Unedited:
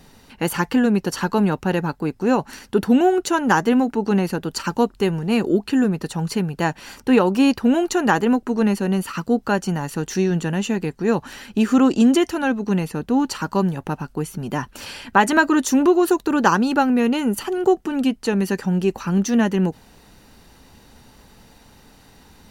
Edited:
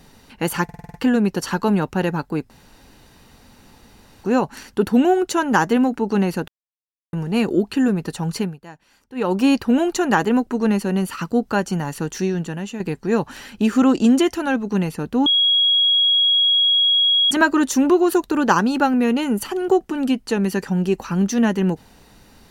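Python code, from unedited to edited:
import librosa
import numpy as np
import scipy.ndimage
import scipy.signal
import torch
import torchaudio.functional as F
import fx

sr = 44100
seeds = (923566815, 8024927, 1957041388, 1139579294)

y = fx.edit(x, sr, fx.stutter(start_s=0.64, slice_s=0.05, count=7),
    fx.insert_room_tone(at_s=2.2, length_s=1.74),
    fx.silence(start_s=4.44, length_s=0.65),
    fx.fade_down_up(start_s=6.36, length_s=0.94, db=-19.0, fade_s=0.19),
    fx.fade_out_to(start_s=9.97, length_s=0.79, floor_db=-9.0),
    fx.bleep(start_s=13.22, length_s=2.05, hz=3310.0, db=-13.0), tone=tone)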